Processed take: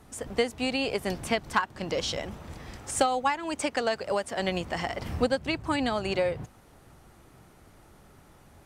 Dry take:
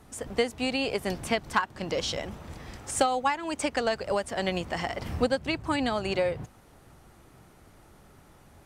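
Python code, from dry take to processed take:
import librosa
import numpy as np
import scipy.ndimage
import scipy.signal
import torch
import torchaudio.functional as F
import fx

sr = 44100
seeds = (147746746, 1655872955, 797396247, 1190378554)

y = fx.highpass(x, sr, hz=150.0, slope=6, at=(3.62, 4.4))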